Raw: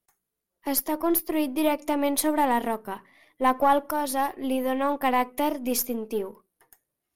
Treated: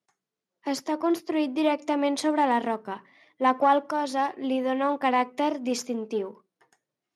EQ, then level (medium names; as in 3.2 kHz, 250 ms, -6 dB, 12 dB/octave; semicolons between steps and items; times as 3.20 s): high-pass 120 Hz 24 dB/octave; low-pass 6.9 kHz 24 dB/octave; 0.0 dB